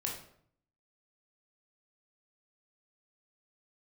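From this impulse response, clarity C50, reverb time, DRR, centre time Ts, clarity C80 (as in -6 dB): 5.0 dB, 0.60 s, -1.5 dB, 34 ms, 9.0 dB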